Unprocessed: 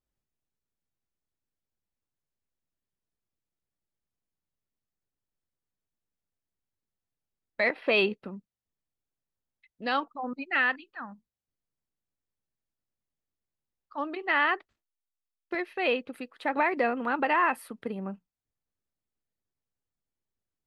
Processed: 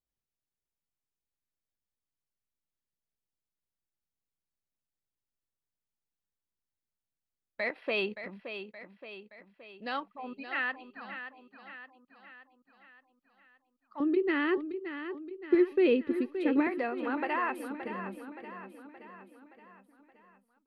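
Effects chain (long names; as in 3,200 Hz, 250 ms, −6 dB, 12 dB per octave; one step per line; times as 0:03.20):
0:14.00–0:16.67: low shelf with overshoot 520 Hz +11 dB, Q 3
repeating echo 572 ms, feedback 53%, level −10 dB
level −7 dB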